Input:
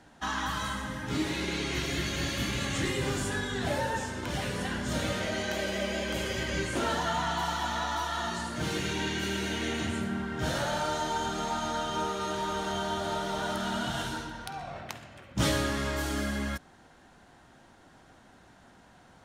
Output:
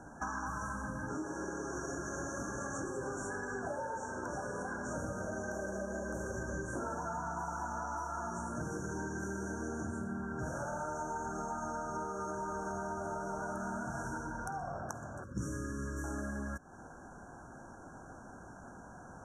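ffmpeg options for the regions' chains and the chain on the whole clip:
-filter_complex "[0:a]asettb=1/sr,asplit=3[a][b][c];[a]atrim=end=1.084[d];[b]atrim=start=1.08:end=4.98,asetpts=PTS-STARTPTS,afade=t=in:d=0.004:c=qsin,afade=t=out:st=3.896:d=0.004:c=qsin,bass=f=250:g=-11,treble=f=4k:g=1,adynamicsmooth=sensitivity=4.5:basefreq=7.9k[e];[c]atrim=start=4.976[f];[d][e]acrossfade=d=0.004:c1=hsin:c2=qsin[g];[g][f]acrossfade=d=0.004:c1=qsin:c2=hsin,asettb=1/sr,asplit=3[h][i][j];[h]atrim=end=15.244[k];[i]atrim=start=15.24:end=16.04,asetpts=PTS-STARTPTS,afade=t=in:d=0.004:c=qsin,afade=t=out:st=0.796:d=0.004:c=qsin,asuperstop=centerf=740:order=4:qfactor=1.3,equalizer=f=1.2k:w=0.65:g=-5[l];[j]atrim=start=16.036[m];[k][l]acrossfade=d=0.004:c1=hsin:c2=qsin[n];[n][m]acrossfade=d=0.004:c1=qsin:c2=hsin,afftfilt=real='re*(1-between(b*sr/4096,1700,5500))':imag='im*(1-between(b*sr/4096,1700,5500))':win_size=4096:overlap=0.75,lowpass=8.1k,acompressor=threshold=-43dB:ratio=6,volume=6dB"

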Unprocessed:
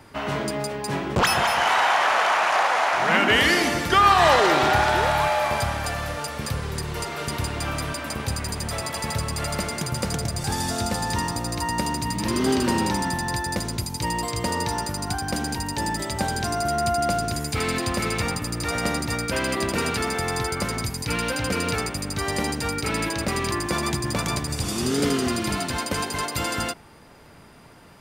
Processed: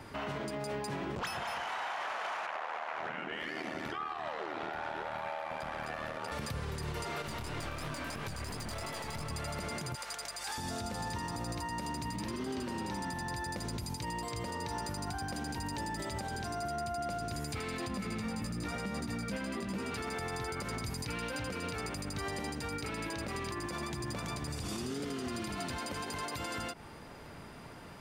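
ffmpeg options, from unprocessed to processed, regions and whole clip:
-filter_complex "[0:a]asettb=1/sr,asplit=3[a][b][c];[a]atrim=end=2.464[d];[b]atrim=start=2.46:end=6.32,asetpts=PTS-STARTPTS,afade=t=in:d=0.004:c=qsin,afade=t=out:st=3.856:d=0.004:c=qsin,highpass=180,aeval=exprs='val(0)*sin(2*PI*39*n/s)':c=same,bass=f=250:g=1,treble=f=4k:g=-10[e];[c]atrim=start=6.316[f];[d][e]acrossfade=d=0.004:c1=hsin:c2=qsin[g];[g][f]acrossfade=d=0.004:c1=qsin:c2=hsin,asettb=1/sr,asplit=3[h][i][j];[h]atrim=end=7.224[k];[i]atrim=start=7.22:end=9.3,asetpts=PTS-STARTPTS,afade=t=in:d=0.004:c=qsin,afade=t=out:st=2.076:d=0.004:c=qsin,aeval=exprs='clip(val(0),-1,0.0251)':c=same,flanger=delay=19.5:depth=6.1:speed=2.9[l];[j]atrim=start=9.296[m];[k][l]acrossfade=d=0.004:c1=hsin:c2=qsin[n];[n][m]acrossfade=d=0.004:c1=qsin:c2=hsin,asettb=1/sr,asplit=3[o][p][q];[o]atrim=end=9.954[r];[p]atrim=start=9.95:end=10.58,asetpts=PTS-STARTPTS,afade=t=in:d=0.004:c=qsin,afade=t=out:st=0.626:d=0.004:c=qsin,highpass=950,aeval=exprs='val(0)+0.00158*(sin(2*PI*50*n/s)+sin(2*PI*2*50*n/s)/2+sin(2*PI*3*50*n/s)/3+sin(2*PI*4*50*n/s)/4+sin(2*PI*5*50*n/s)/5)':c=same[s];[q]atrim=start=10.576[t];[r][s]acrossfade=d=0.004:c1=hsin:c2=qsin[u];[u][t]acrossfade=d=0.004:c1=qsin:c2=hsin,asettb=1/sr,asplit=3[v][w][x];[v]atrim=end=17.884[y];[w]atrim=start=17.88:end=19.91,asetpts=PTS-STARTPTS,afade=t=in:d=0.004:c=qsin,afade=t=out:st=2.026:d=0.004:c=qsin,equalizer=f=210:w=3.1:g=14.5,bandreject=f=162:t=h:w=4,bandreject=f=324:t=h:w=4,bandreject=f=486:t=h:w=4,bandreject=f=648:t=h:w=4,bandreject=f=810:t=h:w=4,bandreject=f=972:t=h:w=4,bandreject=f=1.134k:t=h:w=4,bandreject=f=1.296k:t=h:w=4,bandreject=f=1.458k:t=h:w=4,bandreject=f=1.62k:t=h:w=4,bandreject=f=1.782k:t=h:w=4,bandreject=f=1.944k:t=h:w=4,bandreject=f=2.106k:t=h:w=4,bandreject=f=2.268k:t=h:w=4,bandreject=f=2.43k:t=h:w=4,bandreject=f=2.592k:t=h:w=4,bandreject=f=2.754k:t=h:w=4,bandreject=f=2.916k:t=h:w=4,bandreject=f=3.078k:t=h:w=4,bandreject=f=3.24k:t=h:w=4,bandreject=f=3.402k:t=h:w=4,bandreject=f=3.564k:t=h:w=4,bandreject=f=3.726k:t=h:w=4,bandreject=f=3.888k:t=h:w=4,bandreject=f=4.05k:t=h:w=4,bandreject=f=4.212k:t=h:w=4,bandreject=f=4.374k:t=h:w=4,bandreject=f=4.536k:t=h:w=4,bandreject=f=4.698k:t=h:w=4,bandreject=f=4.86k:t=h:w=4,bandreject=f=5.022k:t=h:w=4,bandreject=f=5.184k:t=h:w=4,bandreject=f=5.346k:t=h:w=4,bandreject=f=5.508k:t=h:w=4,bandreject=f=5.67k:t=h:w=4,bandreject=f=5.832k:t=h:w=4,bandreject=f=5.994k:t=h:w=4,bandreject=f=6.156k:t=h:w=4,flanger=delay=15:depth=4.2:speed=1[z];[x]atrim=start=19.906[aa];[y][z]acrossfade=d=0.004:c1=hsin:c2=qsin[ab];[ab][aa]acrossfade=d=0.004:c1=qsin:c2=hsin,highshelf=f=6.4k:g=-5,acompressor=threshold=-28dB:ratio=6,alimiter=level_in=5dB:limit=-24dB:level=0:latency=1:release=120,volume=-5dB"

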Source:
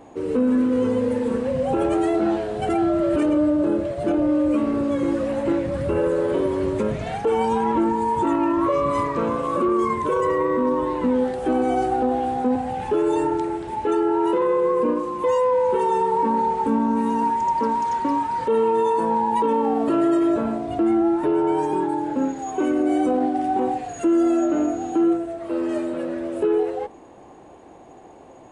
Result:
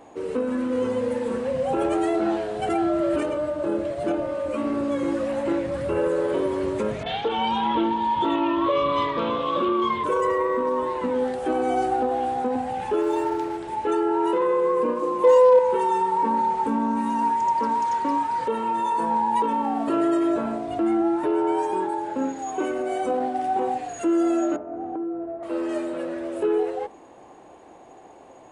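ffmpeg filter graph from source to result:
-filter_complex "[0:a]asettb=1/sr,asplit=3[a][b][c];[a]atrim=end=7.034[d];[b]atrim=start=7.03:end=10.04,asetpts=PTS-STARTPTS,afade=t=in:d=0.004:c=qsin,afade=t=out:st=3.006:d=0.004:c=qsin,lowpass=f=3.4k:t=q:w=6.5,acrossover=split=1900[e][f];[f]adelay=30[g];[e][g]amix=inputs=2:normalize=0,atrim=end_sample=132741[h];[c]atrim=start=10.036[i];[d][h]acrossfade=d=0.004:c1=hsin:c2=qsin[j];[j][i]acrossfade=d=0.004:c1=qsin:c2=hsin,asettb=1/sr,asplit=3[k][l][m];[k]atrim=end=13.014[n];[l]atrim=start=13.01:end=13.58,asetpts=PTS-STARTPTS,afade=t=in:d=0.004:c=qsin,afade=t=out:st=0.566:d=0.004:c=qsin,highshelf=f=5.6k:g=-7.5,aeval=exprs='sgn(val(0))*max(abs(val(0))-0.0075,0)':c=same[o];[m]atrim=start=13.576[p];[n][o]acrossfade=d=0.004:c1=hsin:c2=qsin[q];[q][p]acrossfade=d=0.004:c1=qsin:c2=hsin,asettb=1/sr,asplit=3[r][s][t];[r]atrim=end=15.024[u];[s]atrim=start=15.02:end=15.59,asetpts=PTS-STARTPTS,afade=t=in:d=0.004:c=qsin,afade=t=out:st=0.566:d=0.004:c=qsin,asoftclip=type=hard:threshold=-14dB,highpass=57,equalizer=f=460:w=0.92:g=7.5[v];[t]atrim=start=15.586[w];[u][v]acrossfade=d=0.004:c1=hsin:c2=qsin[x];[x][w]acrossfade=d=0.004:c1=qsin:c2=hsin,asettb=1/sr,asplit=3[y][z][aa];[y]atrim=end=24.564[ab];[z]atrim=start=24.56:end=25.43,asetpts=PTS-STARTPTS,afade=t=in:d=0.004:c=qsin,afade=t=out:st=0.866:d=0.004:c=qsin,lowpass=1k,acompressor=threshold=-24dB:ratio=6:attack=3.2:release=140:knee=1:detection=peak[ac];[aa]atrim=start=25.426[ad];[ab][ac]acrossfade=d=0.004:c1=hsin:c2=qsin[ae];[ae][ad]acrossfade=d=0.004:c1=qsin:c2=hsin,lowshelf=f=260:g=-7,bandreject=f=50:t=h:w=6,bandreject=f=100:t=h:w=6,bandreject=f=150:t=h:w=6,bandreject=f=200:t=h:w=6,bandreject=f=250:t=h:w=6,bandreject=f=300:t=h:w=6,bandreject=f=350:t=h:w=6,bandreject=f=400:t=h:w=6,bandreject=f=450:t=h:w=6"

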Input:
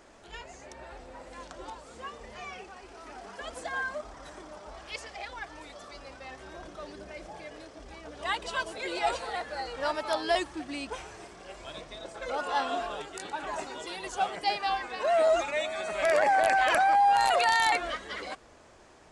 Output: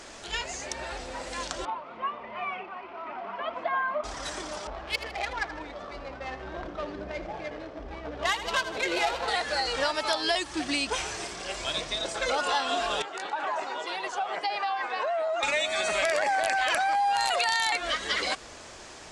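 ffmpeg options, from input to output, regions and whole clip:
-filter_complex "[0:a]asettb=1/sr,asplit=3[a][b][c];[a]atrim=end=1.654[d];[b]atrim=start=1.65:end=4.04,asetpts=PTS-STARTPTS,afade=t=in:d=0.004:c=qsin,afade=t=out:st=2.386:d=0.004:c=qsin,highpass=200,equalizer=f=290:t=q:w=4:g=-5,equalizer=f=470:t=q:w=4:g=-10,equalizer=f=680:t=q:w=4:g=3,equalizer=f=1k:t=q:w=4:g=5,equalizer=f=1.7k:t=q:w=4:g=-10,lowpass=f=2.2k:w=0.5412,lowpass=f=2.2k:w=1.3066,bandreject=f=800:w=9.1[e];[c]atrim=start=4.036[f];[d][e]acrossfade=d=0.004:c1=hsin:c2=qsin[g];[g][f]acrossfade=d=0.004:c1=qsin:c2=hsin,asettb=1/sr,asplit=3[h][i][j];[h]atrim=end=4.674[k];[i]atrim=start=4.67:end=9.28,asetpts=PTS-STARTPTS,afade=t=in:d=0.004:c=qsin,afade=t=out:st=4.606:d=0.004:c=qsin,adynamicsmooth=sensitivity=5:basefreq=1.1k,aecho=1:1:78|156|234|312:0.211|0.0951|0.0428|0.0193,atrim=end_sample=203301[l];[j]atrim=start=9.276[m];[k][l]acrossfade=d=0.004:c1=hsin:c2=qsin[n];[n][m]acrossfade=d=0.004:c1=qsin:c2=hsin,asettb=1/sr,asplit=3[o][p][q];[o]atrim=end=13.024[r];[p]atrim=start=13.02:end=15.43,asetpts=PTS-STARTPTS,afade=t=in:d=0.004:c=qsin,afade=t=out:st=2.406:d=0.004:c=qsin,bandpass=f=890:t=q:w=1,acompressor=threshold=-34dB:ratio=6:attack=3.2:release=140:knee=1:detection=peak[s];[q]atrim=start=15.426[t];[r][s]acrossfade=d=0.004:c1=hsin:c2=qsin[u];[u][t]acrossfade=d=0.004:c1=qsin:c2=hsin,equalizer=f=5.3k:t=o:w=2.8:g=10,acompressor=threshold=-31dB:ratio=6,volume=7dB"

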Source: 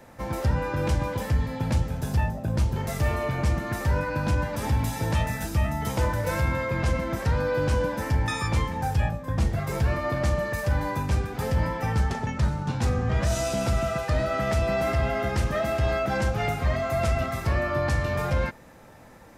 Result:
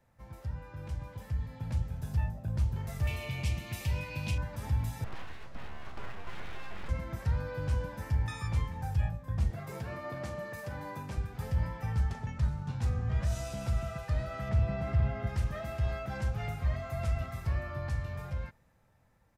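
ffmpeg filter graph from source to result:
-filter_complex "[0:a]asettb=1/sr,asplit=3[a][b][c];[a]atrim=end=3.074[d];[b]atrim=start=3.07:end=4.38,asetpts=PTS-STARTPTS,afade=t=in:d=0.004:c=qsin,afade=t=out:st=1.306:d=0.004:c=qsin,highpass=65,highshelf=f=2k:t=q:w=3:g=8.5[e];[c]atrim=start=4.376[f];[d][e]acrossfade=d=0.004:c1=hsin:c2=qsin[g];[g][f]acrossfade=d=0.004:c1=qsin:c2=hsin,asettb=1/sr,asplit=3[h][i][j];[h]atrim=end=5.044[k];[i]atrim=start=5.04:end=6.89,asetpts=PTS-STARTPTS,afade=t=in:d=0.004:c=qsin,afade=t=out:st=1.846:d=0.004:c=qsin,highpass=150,lowpass=2.6k,aeval=exprs='abs(val(0))':c=same[l];[j]atrim=start=6.886[m];[k][l]acrossfade=d=0.004:c1=hsin:c2=qsin[n];[n][m]acrossfade=d=0.004:c1=qsin:c2=hsin,asettb=1/sr,asplit=3[o][p][q];[o]atrim=end=9.504[r];[p]atrim=start=9.5:end=11.18,asetpts=PTS-STARTPTS,afade=t=in:d=0.004:c=qsin,afade=t=out:st=1.676:d=0.004:c=qsin,highpass=300,lowshelf=f=380:g=10[s];[q]atrim=start=11.176[t];[r][s]acrossfade=d=0.004:c1=hsin:c2=qsin[u];[u][t]acrossfade=d=0.004:c1=qsin:c2=hsin,asettb=1/sr,asplit=3[v][w][x];[v]atrim=end=14.494[y];[w]atrim=start=14.49:end=15.27,asetpts=PTS-STARTPTS,afade=t=in:d=0.004:c=qsin,afade=t=out:st=0.776:d=0.004:c=qsin,highpass=110,aemphasis=mode=reproduction:type=bsi,volume=14dB,asoftclip=hard,volume=-14dB[z];[x]atrim=start=15.266[aa];[y][z]acrossfade=d=0.004:c1=hsin:c2=qsin[ab];[ab][aa]acrossfade=d=0.004:c1=qsin:c2=hsin,lowshelf=f=460:g=-7.5,dynaudnorm=f=240:g=13:m=8.5dB,firequalizer=gain_entry='entry(100,0);entry(280,-14);entry(6000,-16);entry(13000,-14)':delay=0.05:min_phase=1,volume=-6dB"

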